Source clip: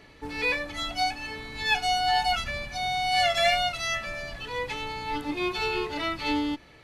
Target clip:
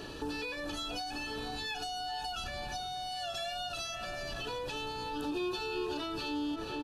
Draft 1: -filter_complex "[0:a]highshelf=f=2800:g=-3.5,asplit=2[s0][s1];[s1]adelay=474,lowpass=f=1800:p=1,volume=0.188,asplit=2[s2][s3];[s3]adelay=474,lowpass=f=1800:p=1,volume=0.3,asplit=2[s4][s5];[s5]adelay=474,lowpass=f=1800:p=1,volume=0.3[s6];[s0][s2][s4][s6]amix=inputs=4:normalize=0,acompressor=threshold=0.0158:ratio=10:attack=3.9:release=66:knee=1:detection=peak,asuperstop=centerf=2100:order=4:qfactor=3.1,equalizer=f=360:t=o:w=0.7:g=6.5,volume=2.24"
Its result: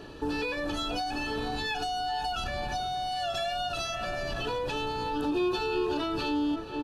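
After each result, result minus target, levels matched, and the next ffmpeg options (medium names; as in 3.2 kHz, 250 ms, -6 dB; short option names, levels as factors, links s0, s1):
compression: peak gain reduction -8 dB; 4 kHz band -3.0 dB
-filter_complex "[0:a]highshelf=f=2800:g=-3.5,asplit=2[s0][s1];[s1]adelay=474,lowpass=f=1800:p=1,volume=0.188,asplit=2[s2][s3];[s3]adelay=474,lowpass=f=1800:p=1,volume=0.3,asplit=2[s4][s5];[s5]adelay=474,lowpass=f=1800:p=1,volume=0.3[s6];[s0][s2][s4][s6]amix=inputs=4:normalize=0,acompressor=threshold=0.00708:ratio=10:attack=3.9:release=66:knee=1:detection=peak,asuperstop=centerf=2100:order=4:qfactor=3.1,equalizer=f=360:t=o:w=0.7:g=6.5,volume=2.24"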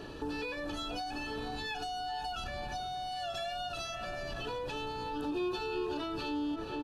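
4 kHz band -3.0 dB
-filter_complex "[0:a]highshelf=f=2800:g=5,asplit=2[s0][s1];[s1]adelay=474,lowpass=f=1800:p=1,volume=0.188,asplit=2[s2][s3];[s3]adelay=474,lowpass=f=1800:p=1,volume=0.3,asplit=2[s4][s5];[s5]adelay=474,lowpass=f=1800:p=1,volume=0.3[s6];[s0][s2][s4][s6]amix=inputs=4:normalize=0,acompressor=threshold=0.00708:ratio=10:attack=3.9:release=66:knee=1:detection=peak,asuperstop=centerf=2100:order=4:qfactor=3.1,equalizer=f=360:t=o:w=0.7:g=6.5,volume=2.24"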